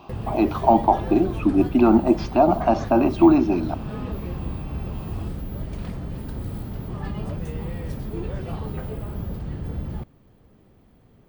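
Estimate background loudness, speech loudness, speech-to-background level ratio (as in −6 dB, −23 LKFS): −32.0 LKFS, −19.5 LKFS, 12.5 dB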